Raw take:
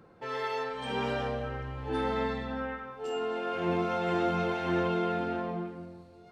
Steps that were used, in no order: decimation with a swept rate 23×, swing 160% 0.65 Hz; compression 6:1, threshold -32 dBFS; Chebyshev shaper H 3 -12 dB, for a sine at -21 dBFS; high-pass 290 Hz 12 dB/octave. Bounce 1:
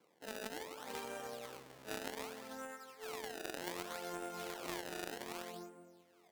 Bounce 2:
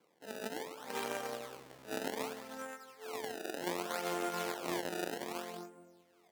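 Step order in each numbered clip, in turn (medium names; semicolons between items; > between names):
decimation with a swept rate > high-pass > compression > Chebyshev shaper; decimation with a swept rate > Chebyshev shaper > high-pass > compression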